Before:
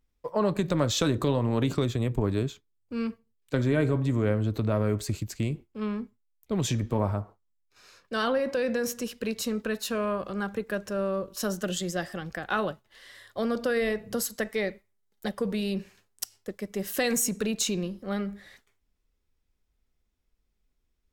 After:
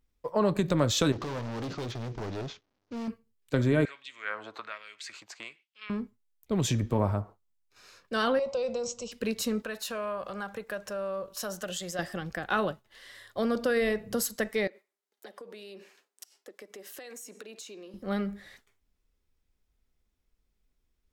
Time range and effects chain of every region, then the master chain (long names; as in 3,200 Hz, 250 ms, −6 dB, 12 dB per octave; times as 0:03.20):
0:01.12–0:03.08: variable-slope delta modulation 32 kbit/s + gain into a clipping stage and back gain 30.5 dB + low-shelf EQ 220 Hz −5.5 dB
0:03.85–0:05.90: auto-filter high-pass sine 1.2 Hz 840–3,000 Hz + high-frequency loss of the air 93 metres
0:08.39–0:09.12: linear-phase brick-wall low-pass 8,100 Hz + phaser with its sweep stopped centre 710 Hz, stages 4
0:09.62–0:11.99: low shelf with overshoot 460 Hz −7 dB, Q 1.5 + downward compressor 2 to 1, threshold −33 dBFS
0:14.67–0:17.94: high-pass filter 310 Hz 24 dB per octave + high-shelf EQ 8,200 Hz −5 dB + downward compressor, threshold −43 dBFS
whole clip: no processing